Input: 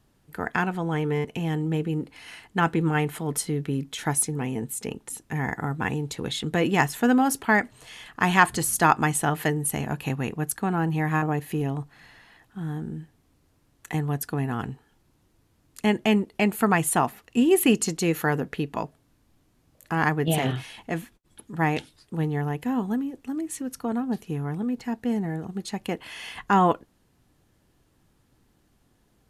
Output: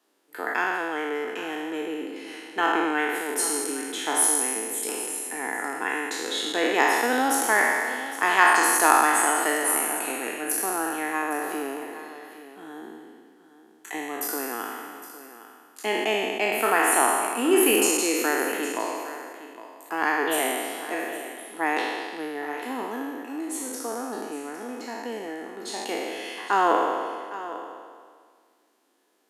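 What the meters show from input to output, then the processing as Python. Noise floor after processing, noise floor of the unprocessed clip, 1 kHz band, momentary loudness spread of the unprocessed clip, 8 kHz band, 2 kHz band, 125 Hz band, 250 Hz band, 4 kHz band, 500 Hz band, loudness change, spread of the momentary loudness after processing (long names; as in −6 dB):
−56 dBFS, −65 dBFS, +2.5 dB, 13 LU, +6.0 dB, +4.0 dB, below −25 dB, −5.0 dB, +4.0 dB, +1.5 dB, +1.0 dB, 17 LU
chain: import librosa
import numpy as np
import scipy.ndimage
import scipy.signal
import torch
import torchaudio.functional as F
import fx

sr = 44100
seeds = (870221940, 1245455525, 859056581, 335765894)

p1 = fx.spec_trails(x, sr, decay_s=1.81)
p2 = scipy.signal.sosfilt(scipy.signal.butter(6, 290.0, 'highpass', fs=sr, output='sos'), p1)
p3 = p2 + fx.echo_single(p2, sr, ms=810, db=-14.5, dry=0)
y = p3 * librosa.db_to_amplitude(-2.5)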